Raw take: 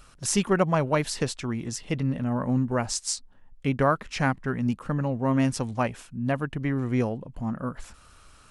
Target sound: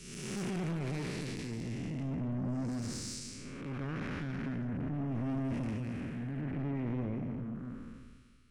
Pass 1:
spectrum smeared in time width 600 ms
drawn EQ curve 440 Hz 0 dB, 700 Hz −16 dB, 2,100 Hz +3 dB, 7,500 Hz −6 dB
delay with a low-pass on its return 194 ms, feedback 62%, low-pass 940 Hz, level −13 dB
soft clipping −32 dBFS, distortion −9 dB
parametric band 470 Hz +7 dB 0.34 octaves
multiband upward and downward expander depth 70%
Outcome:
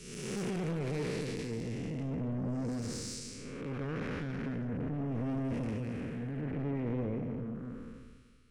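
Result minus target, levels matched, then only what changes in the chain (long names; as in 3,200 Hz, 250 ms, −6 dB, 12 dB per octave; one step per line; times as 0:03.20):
500 Hz band +4.0 dB
change: parametric band 470 Hz −3 dB 0.34 octaves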